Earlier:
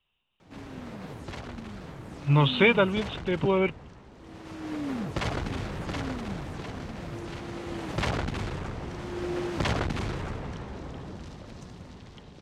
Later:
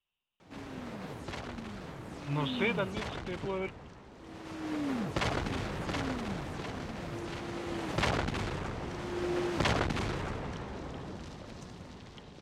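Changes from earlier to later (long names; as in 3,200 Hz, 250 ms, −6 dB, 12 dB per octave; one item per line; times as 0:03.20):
speech −10.5 dB
master: add low-shelf EQ 180 Hz −5 dB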